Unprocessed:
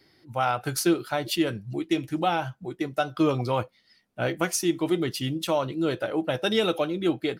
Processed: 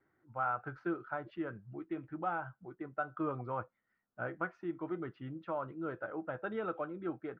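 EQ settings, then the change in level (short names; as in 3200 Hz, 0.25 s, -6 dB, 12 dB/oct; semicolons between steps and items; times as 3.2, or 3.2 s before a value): ladder low-pass 1600 Hz, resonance 55%; -4.5 dB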